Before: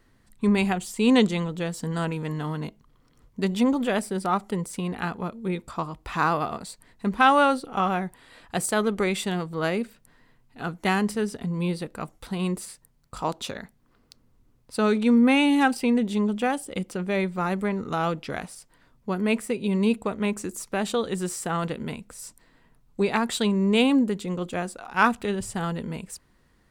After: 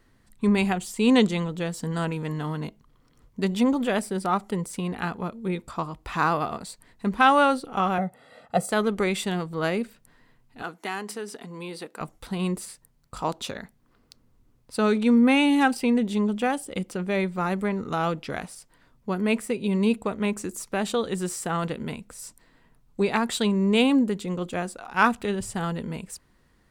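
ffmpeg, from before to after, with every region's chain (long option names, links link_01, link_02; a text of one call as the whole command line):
ffmpeg -i in.wav -filter_complex "[0:a]asettb=1/sr,asplit=3[link_01][link_02][link_03];[link_01]atrim=end=7.984[link_04];[link_02]atrim=start=7.98:end=8.71,asetpts=PTS-STARTPTS,afade=type=in:duration=0.004:curve=qsin,afade=type=out:start_time=0.726:duration=0.004:curve=qsin,highpass=280,tiltshelf=frequency=920:gain=9.5,aecho=1:1:1.5:0.92,atrim=end_sample=32193[link_05];[link_03]atrim=start=8.706[link_06];[link_04][link_05]acrossfade=duration=0.004:curve1=hsin:curve2=qsin[link_07];[link_07][link_06]acrossfade=duration=0.004:curve1=qsin:curve2=hsin,asettb=1/sr,asplit=3[link_08][link_09][link_10];[link_08]atrim=end=10.624[link_11];[link_09]atrim=start=10.62:end=12.01,asetpts=PTS-STARTPTS,afade=type=in:duration=0.004:curve=qsin,afade=type=out:start_time=1.386:duration=0.004:curve=qsin,bandreject=frequency=560:width=8.4,acompressor=threshold=-25dB:ratio=4:attack=3.2:release=140:knee=1:detection=peak,highpass=350[link_12];[link_10]atrim=start=12.006[link_13];[link_11][link_12]acrossfade=duration=0.004:curve1=hsin:curve2=qsin[link_14];[link_14][link_13]acrossfade=duration=0.004:curve1=qsin:curve2=hsin" out.wav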